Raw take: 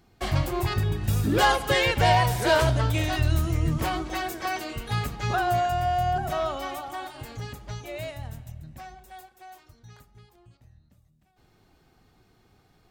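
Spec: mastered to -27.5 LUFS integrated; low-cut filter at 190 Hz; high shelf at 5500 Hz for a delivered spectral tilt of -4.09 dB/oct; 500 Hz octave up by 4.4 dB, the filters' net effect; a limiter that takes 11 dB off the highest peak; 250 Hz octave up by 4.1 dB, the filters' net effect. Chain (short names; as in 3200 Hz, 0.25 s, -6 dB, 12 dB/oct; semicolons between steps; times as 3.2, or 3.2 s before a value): HPF 190 Hz; bell 250 Hz +5.5 dB; bell 500 Hz +5 dB; high shelf 5500 Hz -3.5 dB; limiter -17 dBFS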